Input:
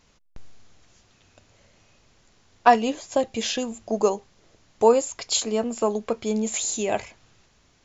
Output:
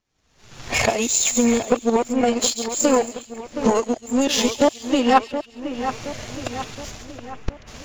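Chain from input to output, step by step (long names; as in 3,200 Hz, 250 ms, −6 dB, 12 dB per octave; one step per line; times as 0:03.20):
played backwards from end to start
camcorder AGC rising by 45 dB per second
phase-vocoder pitch shift with formants kept +1.5 semitones
power curve on the samples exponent 1.4
on a send: echo with a time of its own for lows and highs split 2,700 Hz, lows 721 ms, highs 137 ms, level −10 dB
on the sum: level +2 dB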